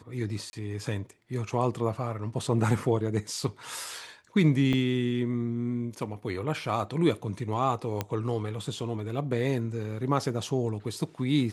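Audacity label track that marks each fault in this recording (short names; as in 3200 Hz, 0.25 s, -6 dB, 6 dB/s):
0.500000	0.530000	gap 30 ms
4.730000	4.730000	gap 3.9 ms
8.010000	8.010000	pop -14 dBFS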